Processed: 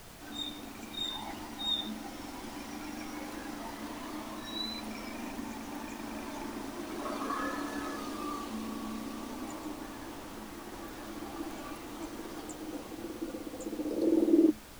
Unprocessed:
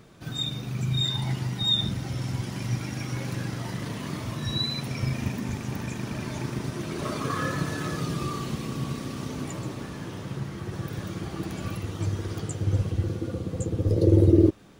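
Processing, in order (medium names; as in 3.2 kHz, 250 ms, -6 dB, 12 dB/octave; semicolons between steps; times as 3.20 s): rippled Chebyshev high-pass 210 Hz, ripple 9 dB; added noise pink -50 dBFS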